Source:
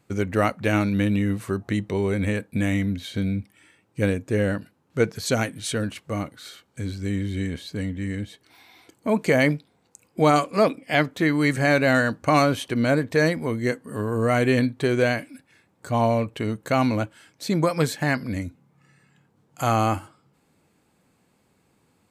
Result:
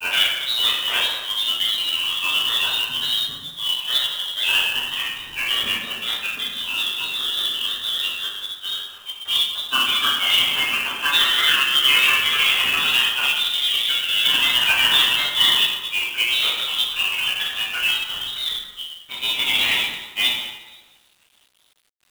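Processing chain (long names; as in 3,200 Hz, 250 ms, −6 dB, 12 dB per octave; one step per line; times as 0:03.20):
mains-hum notches 50/100 Hz
rotating-speaker cabinet horn 6.3 Hz
voice inversion scrambler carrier 3,400 Hz
granular cloud, spray 659 ms, pitch spread up and down by 3 semitones
dense smooth reverb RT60 1.2 s, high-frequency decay 0.7×, DRR −8 dB
log-companded quantiser 4 bits
level −1.5 dB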